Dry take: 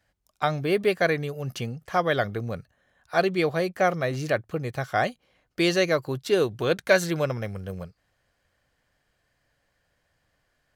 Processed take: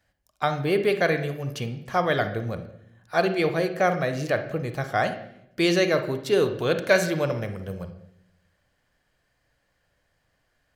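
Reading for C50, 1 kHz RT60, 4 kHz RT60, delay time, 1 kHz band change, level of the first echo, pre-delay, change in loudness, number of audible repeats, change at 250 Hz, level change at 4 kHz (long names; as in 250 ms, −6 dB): 9.5 dB, 0.65 s, 0.65 s, no echo audible, +0.5 dB, no echo audible, 33 ms, +1.0 dB, no echo audible, +1.5 dB, +0.5 dB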